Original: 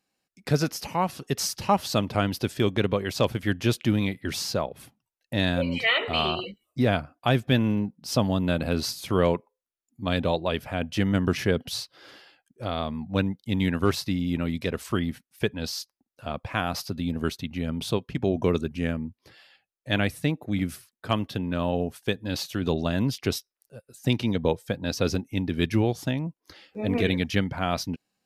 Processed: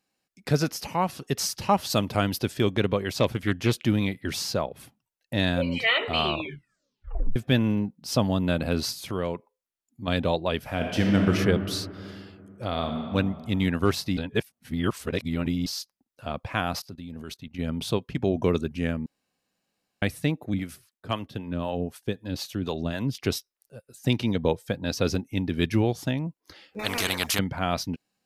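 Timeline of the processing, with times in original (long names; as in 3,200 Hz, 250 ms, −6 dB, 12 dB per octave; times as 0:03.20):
0:01.90–0:02.39: high-shelf EQ 7,100 Hz +8 dB
0:03.12–0:03.84: highs frequency-modulated by the lows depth 0.2 ms
0:06.26: tape stop 1.10 s
0:08.97–0:10.08: downward compressor 1.5 to 1, threshold −36 dBFS
0:10.59–0:11.31: thrown reverb, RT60 2.5 s, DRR 1 dB
0:12.67–0:13.13: thrown reverb, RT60 2.5 s, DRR 4 dB
0:14.17–0:15.66: reverse
0:16.79–0:17.59: output level in coarse steps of 19 dB
0:19.06–0:20.02: fill with room tone
0:20.54–0:23.15: two-band tremolo in antiphase 3.9 Hz, crossover 490 Hz
0:26.79–0:27.39: every bin compressed towards the loudest bin 4 to 1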